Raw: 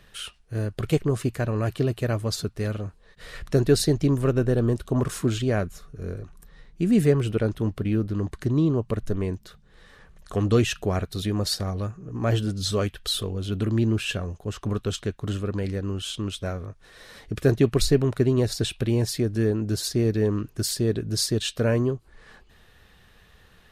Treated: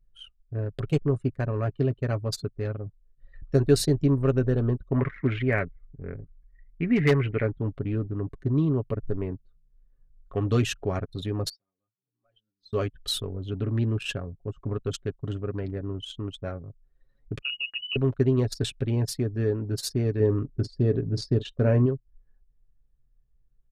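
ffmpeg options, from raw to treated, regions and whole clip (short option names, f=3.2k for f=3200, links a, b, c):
-filter_complex "[0:a]asettb=1/sr,asplit=3[a][b][c];[a]atrim=end=4.904[d];[b]atrim=start=4.9:end=7.49,asetpts=PTS-STARTPTS,afade=t=in:d=0.004:c=qsin,afade=t=out:st=2.586:d=0.004:c=qsin,lowpass=f=2.1k:t=q:w=6.5,aeval=exprs='0.266*(abs(mod(val(0)/0.266+3,4)-2)-1)':c=same[e];[c]atrim=start=7.486[f];[d][e]acrossfade=d=0.004:c1=hsin:c2=qsin[g];[g][f]acrossfade=d=0.004:c1=qsin:c2=hsin,asettb=1/sr,asplit=3[h][i][j];[h]atrim=end=11.494[k];[i]atrim=start=11.49:end=12.73,asetpts=PTS-STARTPTS,afade=t=in:d=0.004:c=qsin,afade=t=out:st=1.236:d=0.004:c=qsin,highpass=140,lowpass=5k,aderivative,asoftclip=type=hard:threshold=-36.5dB[l];[j]atrim=start=12.726[m];[k][l]acrossfade=d=0.004:c1=hsin:c2=qsin[n];[n][m]acrossfade=d=0.004:c1=qsin:c2=hsin,asettb=1/sr,asplit=3[o][p][q];[o]atrim=end=17.414[r];[p]atrim=start=17.41:end=17.96,asetpts=PTS-STARTPTS,afade=t=in:d=0.004:c=qsin,afade=t=out:st=0.546:d=0.004:c=qsin,acompressor=threshold=-27dB:ratio=4:attack=3.2:release=140:knee=1:detection=peak,lowpass=f=2.6k:t=q:w=0.5098,lowpass=f=2.6k:t=q:w=0.6013,lowpass=f=2.6k:t=q:w=0.9,lowpass=f=2.6k:t=q:w=2.563,afreqshift=-3000[s];[q]atrim=start=17.956[t];[r][s]acrossfade=d=0.004:c1=hsin:c2=qsin[u];[u][t]acrossfade=d=0.004:c1=qsin:c2=hsin,asettb=1/sr,asplit=3[v][w][x];[v]atrim=end=20.204[y];[w]atrim=start=20.2:end=21.86,asetpts=PTS-STARTPTS,afade=t=in:d=0.004:c=qsin,afade=t=out:st=1.656:d=0.004:c=qsin,lowpass=5.6k,tiltshelf=f=900:g=4.5,asplit=2[z][aa];[aa]adelay=41,volume=-13dB[ab];[z][ab]amix=inputs=2:normalize=0,atrim=end_sample=73206[ac];[x]atrim=start=21.856[ad];[y][ac]acrossfade=d=0.004:c1=hsin:c2=qsin[ae];[ae][ad]acrossfade=d=0.004:c1=qsin:c2=hsin,anlmdn=39.8,aecho=1:1:7.3:0.47,volume=-3.5dB"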